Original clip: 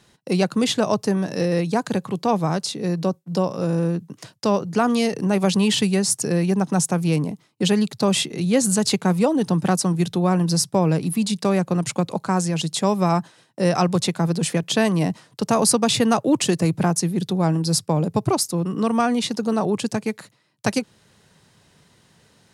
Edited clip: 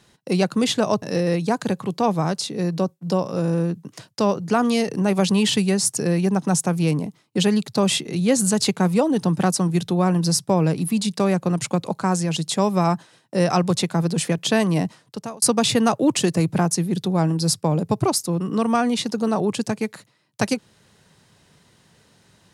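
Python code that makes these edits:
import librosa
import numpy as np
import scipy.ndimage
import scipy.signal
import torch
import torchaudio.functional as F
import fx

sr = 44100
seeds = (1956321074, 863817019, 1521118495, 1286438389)

y = fx.edit(x, sr, fx.cut(start_s=1.02, length_s=0.25),
    fx.fade_out_span(start_s=15.07, length_s=0.6), tone=tone)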